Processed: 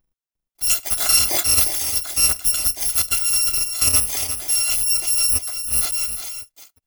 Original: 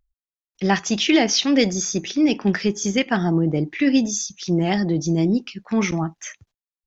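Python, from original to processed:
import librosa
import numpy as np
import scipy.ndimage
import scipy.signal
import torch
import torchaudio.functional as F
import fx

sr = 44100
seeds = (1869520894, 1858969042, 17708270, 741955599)

y = fx.bit_reversed(x, sr, seeds[0], block=256)
y = y + 10.0 ** (-9.0 / 20.0) * np.pad(y, (int(353 * sr / 1000.0), 0))[:len(y)]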